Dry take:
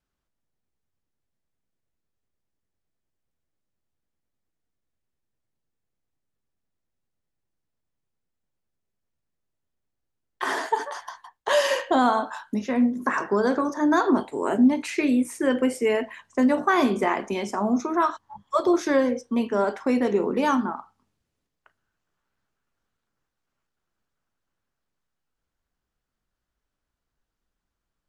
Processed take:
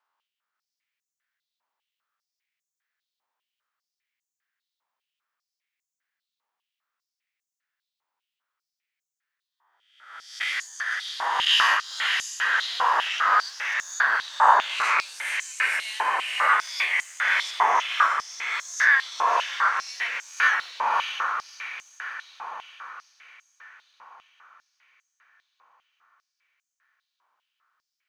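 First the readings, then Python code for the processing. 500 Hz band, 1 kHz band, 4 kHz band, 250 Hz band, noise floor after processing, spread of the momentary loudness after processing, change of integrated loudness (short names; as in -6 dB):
-16.0 dB, +3.5 dB, +10.5 dB, under -35 dB, under -85 dBFS, 17 LU, +0.5 dB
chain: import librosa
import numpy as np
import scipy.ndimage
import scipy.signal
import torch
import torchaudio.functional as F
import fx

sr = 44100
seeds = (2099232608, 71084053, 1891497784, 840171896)

p1 = fx.spec_swells(x, sr, rise_s=0.88)
p2 = fx.peak_eq(p1, sr, hz=9800.0, db=-10.5, octaves=1.6)
p3 = fx.spec_gate(p2, sr, threshold_db=-10, keep='weak')
p4 = p3 + fx.echo_diffused(p3, sr, ms=629, feedback_pct=53, wet_db=-3.0, dry=0)
p5 = fx.quant_float(p4, sr, bits=6)
p6 = fx.filter_held_highpass(p5, sr, hz=5.0, low_hz=950.0, high_hz=6800.0)
y = F.gain(torch.from_numpy(p6), 2.0).numpy()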